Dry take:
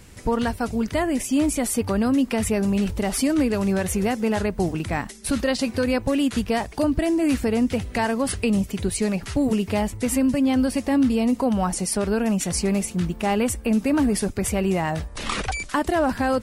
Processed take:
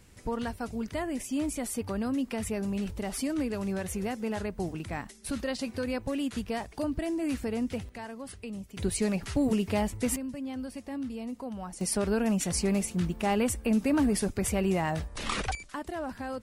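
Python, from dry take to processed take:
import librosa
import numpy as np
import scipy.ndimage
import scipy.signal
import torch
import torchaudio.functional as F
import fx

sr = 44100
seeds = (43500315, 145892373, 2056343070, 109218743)

y = fx.gain(x, sr, db=fx.steps((0.0, -10.0), (7.89, -18.0), (8.77, -5.0), (10.16, -16.5), (11.81, -5.0), (15.55, -14.5)))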